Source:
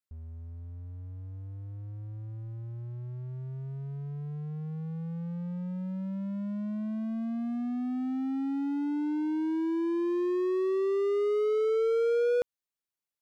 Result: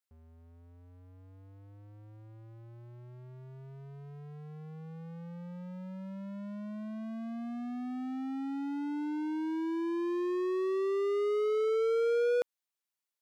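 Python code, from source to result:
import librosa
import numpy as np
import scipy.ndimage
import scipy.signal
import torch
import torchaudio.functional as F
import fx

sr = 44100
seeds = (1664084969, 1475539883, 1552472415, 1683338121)

y = fx.highpass(x, sr, hz=490.0, slope=6)
y = y * 10.0 ** (1.0 / 20.0)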